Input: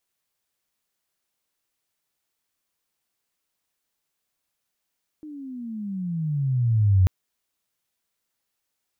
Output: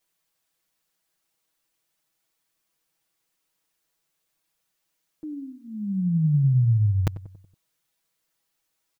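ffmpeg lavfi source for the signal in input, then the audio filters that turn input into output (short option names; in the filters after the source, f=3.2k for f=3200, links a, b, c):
-f lavfi -i "aevalsrc='pow(10,(-13+23*(t/1.84-1))/20)*sin(2*PI*311*1.84/(-21.5*log(2)/12)*(exp(-21.5*log(2)/12*t/1.84)-1))':d=1.84:s=44100"
-filter_complex "[0:a]aecho=1:1:6.2:0.95,asplit=2[a][b];[b]adelay=93,lowpass=f=910:p=1,volume=-15dB,asplit=2[c][d];[d]adelay=93,lowpass=f=910:p=1,volume=0.52,asplit=2[e][f];[f]adelay=93,lowpass=f=910:p=1,volume=0.52,asplit=2[g][h];[h]adelay=93,lowpass=f=910:p=1,volume=0.52,asplit=2[i][j];[j]adelay=93,lowpass=f=910:p=1,volume=0.52[k];[a][c][e][g][i][k]amix=inputs=6:normalize=0"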